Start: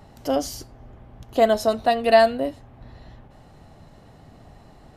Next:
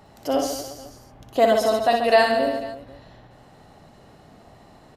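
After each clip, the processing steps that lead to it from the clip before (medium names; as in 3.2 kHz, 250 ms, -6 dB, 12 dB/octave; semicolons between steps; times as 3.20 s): bass shelf 130 Hz -11 dB; on a send: reverse bouncing-ball echo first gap 60 ms, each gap 1.25×, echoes 5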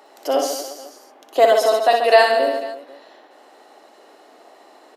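steep high-pass 310 Hz 36 dB/octave; trim +4 dB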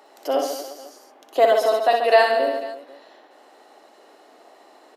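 dynamic bell 7.4 kHz, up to -6 dB, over -43 dBFS, Q 0.87; trim -2.5 dB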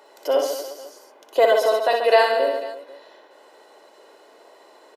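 comb 2 ms, depth 49%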